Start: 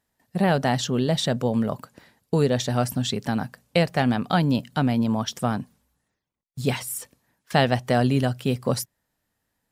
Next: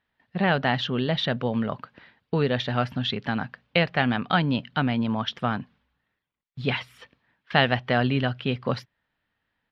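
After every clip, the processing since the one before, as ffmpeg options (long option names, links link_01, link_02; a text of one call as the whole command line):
ffmpeg -i in.wav -af "firequalizer=gain_entry='entry(600,0);entry(1400,7);entry(3200,7);entry(7800,-30)':delay=0.05:min_phase=1,volume=-3dB" out.wav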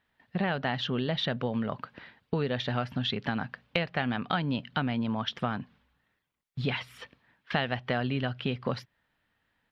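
ffmpeg -i in.wav -af "acompressor=threshold=-31dB:ratio=3,volume=2.5dB" out.wav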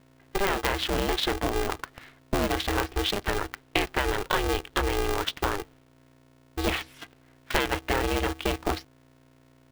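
ffmpeg -i in.wav -filter_complex "[0:a]aeval=exprs='val(0)+0.00141*(sin(2*PI*60*n/s)+sin(2*PI*2*60*n/s)/2+sin(2*PI*3*60*n/s)/3+sin(2*PI*4*60*n/s)/4+sin(2*PI*5*60*n/s)/5)':channel_layout=same,asplit=2[link_01][link_02];[link_02]acrusher=bits=5:mix=0:aa=0.000001,volume=-6.5dB[link_03];[link_01][link_03]amix=inputs=2:normalize=0,aeval=exprs='val(0)*sgn(sin(2*PI*200*n/s))':channel_layout=same" out.wav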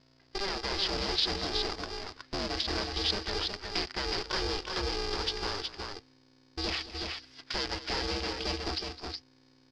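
ffmpeg -i in.wav -filter_complex "[0:a]volume=24dB,asoftclip=hard,volume=-24dB,lowpass=frequency=4900:width_type=q:width=10,asplit=2[link_01][link_02];[link_02]aecho=0:1:210|342|358|369:0.178|0.112|0.2|0.562[link_03];[link_01][link_03]amix=inputs=2:normalize=0,volume=-7dB" out.wav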